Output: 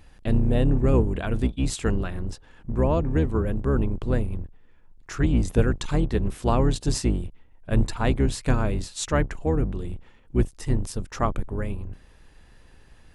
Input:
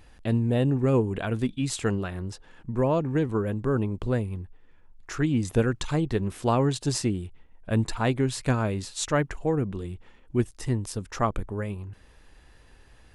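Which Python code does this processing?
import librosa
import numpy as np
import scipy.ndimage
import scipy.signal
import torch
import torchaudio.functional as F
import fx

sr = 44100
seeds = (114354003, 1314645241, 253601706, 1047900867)

y = fx.octave_divider(x, sr, octaves=2, level_db=3.0)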